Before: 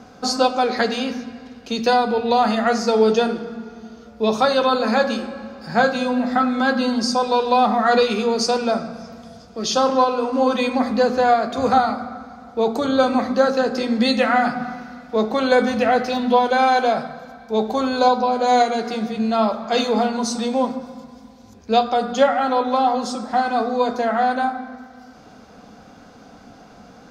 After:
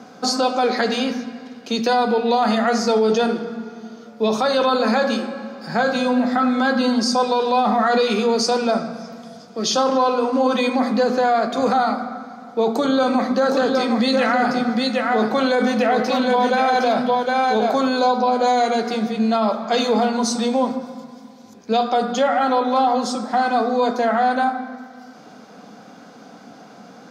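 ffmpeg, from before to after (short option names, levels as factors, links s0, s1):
-filter_complex "[0:a]asettb=1/sr,asplit=3[s0][s1][s2];[s0]atrim=end=12.724[s3];[s1]atrim=start=12.72:end=17.89,asetpts=PTS-STARTPTS,afade=t=in:d=0.004:c=qsin,afade=t=out:st=5.166:d=0.004:c=qsin,aecho=1:1:761:0.562,atrim=end_sample=227997[s4];[s2]atrim=start=17.886[s5];[s3][s4]acrossfade=d=0.004:c1=hsin:c2=qsin[s6];[s6][s5]acrossfade=d=0.004:c1=qsin:c2=hsin,highpass=f=150:w=0.5412,highpass=f=150:w=1.3066,bandreject=f=2700:w=28,alimiter=limit=0.237:level=0:latency=1:release=23,volume=1.33"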